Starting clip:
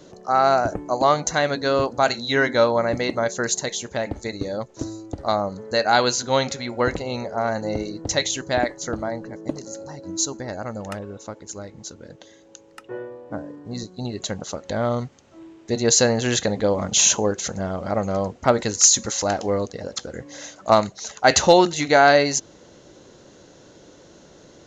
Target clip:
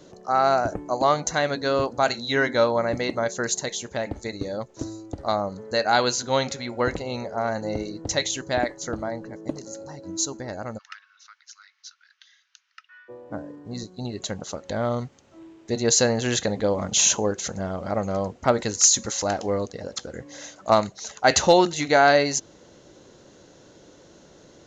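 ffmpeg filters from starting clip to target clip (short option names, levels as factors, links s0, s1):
-filter_complex "[0:a]asplit=3[s0][s1][s2];[s0]afade=t=out:st=10.77:d=0.02[s3];[s1]asuperpass=centerf=2800:order=12:qfactor=0.61,afade=t=in:st=10.77:d=0.02,afade=t=out:st=13.08:d=0.02[s4];[s2]afade=t=in:st=13.08:d=0.02[s5];[s3][s4][s5]amix=inputs=3:normalize=0,volume=0.75"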